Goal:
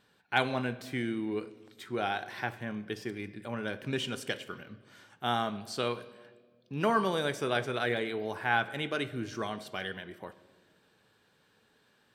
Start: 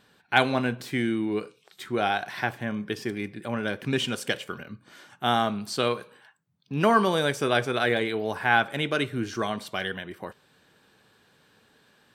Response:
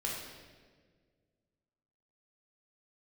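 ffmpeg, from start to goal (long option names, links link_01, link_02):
-filter_complex "[0:a]asplit=2[link_01][link_02];[1:a]atrim=start_sample=2205,lowpass=8400[link_03];[link_02][link_03]afir=irnorm=-1:irlink=0,volume=-15.5dB[link_04];[link_01][link_04]amix=inputs=2:normalize=0,volume=-7.5dB"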